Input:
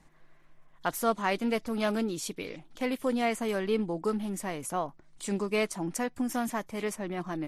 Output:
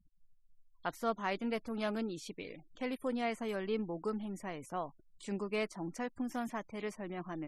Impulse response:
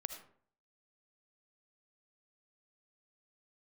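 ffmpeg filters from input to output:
-filter_complex "[0:a]afftfilt=real='re*gte(hypot(re,im),0.00398)':imag='im*gte(hypot(re,im),0.00398)':win_size=1024:overlap=0.75,acrossover=split=5600[link_01][link_02];[link_02]acompressor=threshold=-50dB:ratio=4:attack=1:release=60[link_03];[link_01][link_03]amix=inputs=2:normalize=0,volume=-7dB"

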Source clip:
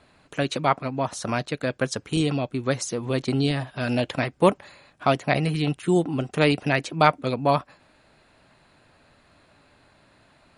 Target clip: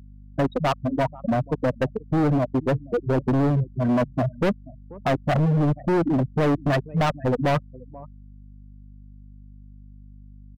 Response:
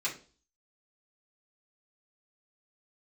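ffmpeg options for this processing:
-filter_complex "[0:a]afftfilt=real='re*gte(hypot(re,im),0.282)':imag='im*gte(hypot(re,im),0.282)':win_size=1024:overlap=0.75,equalizer=frequency=4200:width=0.5:gain=-11.5,asplit=2[link_01][link_02];[link_02]acontrast=79,volume=3dB[link_03];[link_01][link_03]amix=inputs=2:normalize=0,alimiter=limit=-4.5dB:level=0:latency=1:release=33,asplit=2[link_04][link_05];[link_05]adelay=484,volume=-26dB,highshelf=frequency=4000:gain=-10.9[link_06];[link_04][link_06]amix=inputs=2:normalize=0,aeval=exprs='val(0)+0.00794*(sin(2*PI*50*n/s)+sin(2*PI*2*50*n/s)/2+sin(2*PI*3*50*n/s)/3+sin(2*PI*4*50*n/s)/4+sin(2*PI*5*50*n/s)/5)':channel_layout=same,volume=16.5dB,asoftclip=hard,volume=-16.5dB,volume=-1.5dB"

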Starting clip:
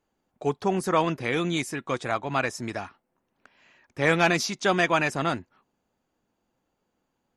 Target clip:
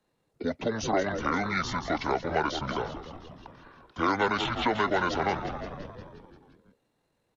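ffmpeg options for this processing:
ffmpeg -i in.wav -filter_complex "[0:a]lowshelf=frequency=420:gain=-8,asplit=9[link_01][link_02][link_03][link_04][link_05][link_06][link_07][link_08][link_09];[link_02]adelay=174,afreqshift=-130,volume=-12.5dB[link_10];[link_03]adelay=348,afreqshift=-260,volume=-16.2dB[link_11];[link_04]adelay=522,afreqshift=-390,volume=-20dB[link_12];[link_05]adelay=696,afreqshift=-520,volume=-23.7dB[link_13];[link_06]adelay=870,afreqshift=-650,volume=-27.5dB[link_14];[link_07]adelay=1044,afreqshift=-780,volume=-31.2dB[link_15];[link_08]adelay=1218,afreqshift=-910,volume=-35dB[link_16];[link_09]adelay=1392,afreqshift=-1040,volume=-38.7dB[link_17];[link_01][link_10][link_11][link_12][link_13][link_14][link_15][link_16][link_17]amix=inputs=9:normalize=0,acrossover=split=440[link_18][link_19];[link_18]alimiter=level_in=10dB:limit=-24dB:level=0:latency=1:release=32,volume=-10dB[link_20];[link_20][link_19]amix=inputs=2:normalize=0,asetrate=26222,aresample=44100,atempo=1.68179,acrossover=split=300|760|2000[link_21][link_22][link_23][link_24];[link_21]acompressor=threshold=-39dB:ratio=4[link_25];[link_22]acompressor=threshold=-36dB:ratio=4[link_26];[link_23]acompressor=threshold=-35dB:ratio=4[link_27];[link_24]acompressor=threshold=-40dB:ratio=4[link_28];[link_25][link_26][link_27][link_28]amix=inputs=4:normalize=0,volume=5.5dB" out.wav

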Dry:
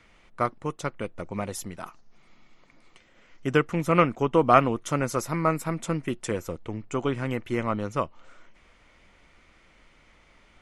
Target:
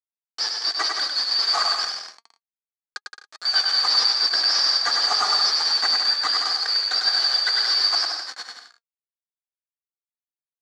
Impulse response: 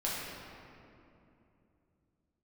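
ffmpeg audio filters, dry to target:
-filter_complex "[0:a]afftfilt=real='real(if(lt(b,272),68*(eq(floor(b/68),0)*3+eq(floor(b/68),1)*2+eq(floor(b/68),2)*1+eq(floor(b/68),3)*0)+mod(b,68),b),0)':imag='imag(if(lt(b,272),68*(eq(floor(b/68),0)*3+eq(floor(b/68),1)*2+eq(floor(b/68),2)*1+eq(floor(b/68),3)*0)+mod(b,68),b),0)':win_size=2048:overlap=0.75,bandreject=frequency=60:width_type=h:width=6,bandreject=frequency=120:width_type=h:width=6,bandreject=frequency=180:width_type=h:width=6,bandreject=frequency=240:width_type=h:width=6,bandreject=frequency=300:width_type=h:width=6,bandreject=frequency=360:width_type=h:width=6,bandreject=frequency=420:width_type=h:width=6,bandreject=frequency=480:width_type=h:width=6,agate=range=-28dB:threshold=-50dB:ratio=16:detection=peak,equalizer=frequency=2600:width=1.7:gain=-7.5,aecho=1:1:2.6:0.96,asplit=2[link_01][link_02];[link_02]acompressor=threshold=-35dB:ratio=8,volume=-1.5dB[link_03];[link_01][link_03]amix=inputs=2:normalize=0,asoftclip=type=tanh:threshold=-14.5dB,asplit=2[link_04][link_05];[link_05]highpass=frequency=720:poles=1,volume=28dB,asoftclip=type=tanh:threshold=-14.5dB[link_06];[link_04][link_06]amix=inputs=2:normalize=0,lowpass=frequency=1300:poles=1,volume=-6dB,acrusher=bits=4:mix=0:aa=0.000001,flanger=delay=1.2:depth=3.9:regen=66:speed=0.28:shape=triangular,highpass=370,equalizer=frequency=770:width_type=q:width=4:gain=6,equalizer=frequency=1200:width_type=q:width=4:gain=9,equalizer=frequency=1700:width_type=q:width=4:gain=8,equalizer=frequency=2800:width_type=q:width=4:gain=-5,equalizer=frequency=4500:width_type=q:width=4:gain=7,lowpass=frequency=6600:width=0.5412,lowpass=frequency=6600:width=1.3066,asplit=2[link_07][link_08];[link_08]aecho=0:1:100|170|219|253.3|277.3:0.631|0.398|0.251|0.158|0.1[link_09];[link_07][link_09]amix=inputs=2:normalize=0,volume=6.5dB"

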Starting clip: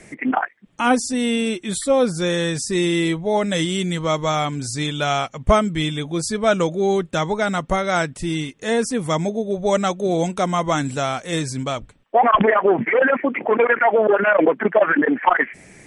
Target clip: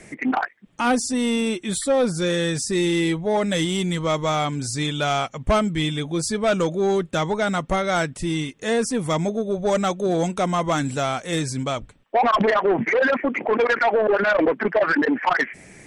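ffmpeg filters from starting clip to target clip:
ffmpeg -i in.wav -af "asoftclip=type=tanh:threshold=-13dB" out.wav

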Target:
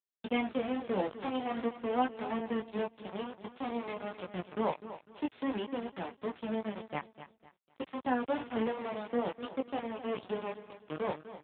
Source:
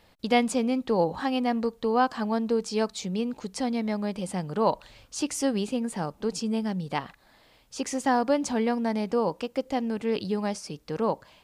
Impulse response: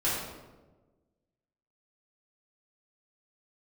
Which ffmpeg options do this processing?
-filter_complex "[0:a]bandreject=frequency=319.7:width_type=h:width=4,bandreject=frequency=639.4:width_type=h:width=4,bandreject=frequency=959.1:width_type=h:width=4,bandreject=frequency=1278.8:width_type=h:width=4,bandreject=frequency=1598.5:width_type=h:width=4,bandreject=frequency=1918.2:width_type=h:width=4,bandreject=frequency=2237.9:width_type=h:width=4,bandreject=frequency=2557.6:width_type=h:width=4,bandreject=frequency=2877.3:width_type=h:width=4,bandreject=frequency=3197:width_type=h:width=4,bandreject=frequency=3516.7:width_type=h:width=4,bandreject=frequency=3836.4:width_type=h:width=4,bandreject=frequency=4156.1:width_type=h:width=4,bandreject=frequency=4475.8:width_type=h:width=4,bandreject=frequency=4795.5:width_type=h:width=4,bandreject=frequency=5115.2:width_type=h:width=4,asplit=2[link_01][link_02];[link_02]acompressor=threshold=-36dB:ratio=4,volume=0dB[link_03];[link_01][link_03]amix=inputs=2:normalize=0,aeval=exprs='val(0)*gte(abs(val(0)),0.0708)':channel_layout=same,flanger=delay=16:depth=4.6:speed=0.49,aecho=1:1:251|502|753:0.224|0.0694|0.0215,volume=-5.5dB" -ar 8000 -c:a libopencore_amrnb -b:a 7950

